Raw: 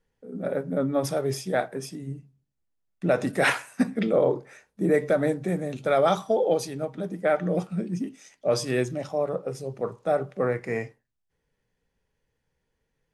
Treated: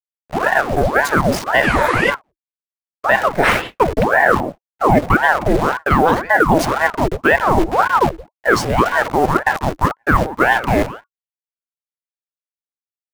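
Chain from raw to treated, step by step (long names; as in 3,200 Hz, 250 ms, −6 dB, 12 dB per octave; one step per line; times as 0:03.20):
hold until the input has moved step −32 dBFS
slap from a distant wall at 30 metres, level −21 dB
healed spectral selection 0:01.66–0:02.07, 690–11,000 Hz before
in parallel at −3 dB: output level in coarse steps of 23 dB
on the sum: noise gate −36 dBFS, range −26 dB
reversed playback
downward compressor 4 to 1, threshold −29 dBFS, peak gain reduction 13 dB
reversed playback
Butterworth high-pass 150 Hz 72 dB per octave
high-shelf EQ 2,300 Hz −9 dB
boost into a limiter +21.5 dB
ring modulator whose carrier an LFO sweeps 720 Hz, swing 80%, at 1.9 Hz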